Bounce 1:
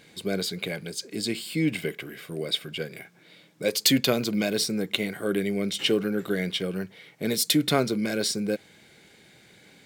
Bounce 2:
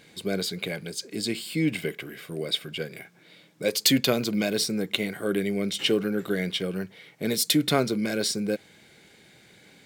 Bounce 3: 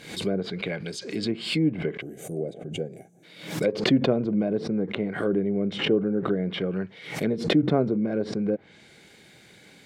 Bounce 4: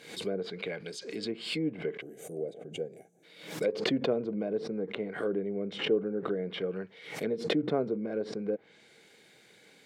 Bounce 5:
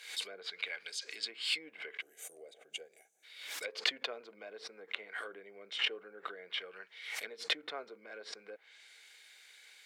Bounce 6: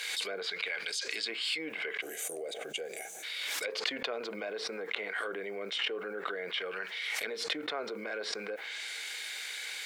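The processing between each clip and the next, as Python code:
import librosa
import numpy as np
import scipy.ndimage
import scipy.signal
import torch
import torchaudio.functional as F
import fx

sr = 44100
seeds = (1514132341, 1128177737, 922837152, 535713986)

y1 = x
y2 = fx.env_lowpass_down(y1, sr, base_hz=720.0, full_db=-23.0)
y2 = fx.spec_box(y2, sr, start_s=2.02, length_s=1.21, low_hz=830.0, high_hz=5800.0, gain_db=-21)
y2 = fx.pre_swell(y2, sr, db_per_s=93.0)
y2 = F.gain(torch.from_numpy(y2), 2.0).numpy()
y3 = fx.highpass(y2, sr, hz=290.0, slope=6)
y3 = fx.peak_eq(y3, sr, hz=460.0, db=6.5, octaves=0.24)
y3 = F.gain(torch.from_numpy(y3), -6.0).numpy()
y4 = scipy.signal.sosfilt(scipy.signal.butter(2, 1500.0, 'highpass', fs=sr, output='sos'), y3)
y4 = F.gain(torch.from_numpy(y4), 3.0).numpy()
y5 = fx.env_flatten(y4, sr, amount_pct=70)
y5 = F.gain(torch.from_numpy(y5), -3.0).numpy()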